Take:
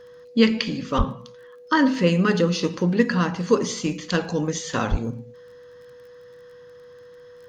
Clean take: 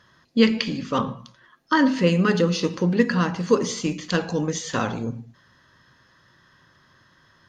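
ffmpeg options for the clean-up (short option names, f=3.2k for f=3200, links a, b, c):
-filter_complex "[0:a]adeclick=t=4,bandreject=f=490:w=30,asplit=3[a][b][c];[a]afade=t=out:st=0.97:d=0.02[d];[b]highpass=f=140:w=0.5412,highpass=f=140:w=1.3066,afade=t=in:st=0.97:d=0.02,afade=t=out:st=1.09:d=0.02[e];[c]afade=t=in:st=1.09:d=0.02[f];[d][e][f]amix=inputs=3:normalize=0,asplit=3[g][h][i];[g]afade=t=out:st=4.9:d=0.02[j];[h]highpass=f=140:w=0.5412,highpass=f=140:w=1.3066,afade=t=in:st=4.9:d=0.02,afade=t=out:st=5.02:d=0.02[k];[i]afade=t=in:st=5.02:d=0.02[l];[j][k][l]amix=inputs=3:normalize=0"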